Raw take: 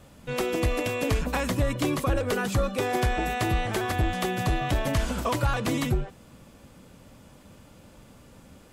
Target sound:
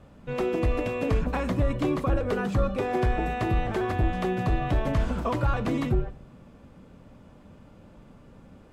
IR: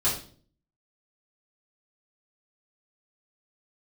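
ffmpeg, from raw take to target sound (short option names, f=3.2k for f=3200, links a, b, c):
-filter_complex "[0:a]lowpass=f=1.3k:p=1,asplit=2[a][b];[1:a]atrim=start_sample=2205[c];[b][c]afir=irnorm=-1:irlink=0,volume=-22.5dB[d];[a][d]amix=inputs=2:normalize=0"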